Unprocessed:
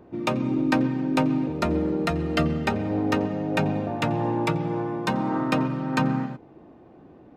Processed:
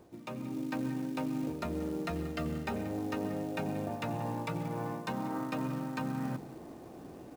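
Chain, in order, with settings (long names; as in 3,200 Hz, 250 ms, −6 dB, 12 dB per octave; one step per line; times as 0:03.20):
mains-hum notches 50/100/150/200/250/300/350/400 Hz
reversed playback
downward compressor 8 to 1, threshold −35 dBFS, peak gain reduction 18 dB
reversed playback
notch filter 3,200 Hz, Q 20
on a send: single-tap delay 183 ms −18 dB
on the sum: log-companded quantiser 6 bits
automatic gain control gain up to 6.5 dB
level −4.5 dB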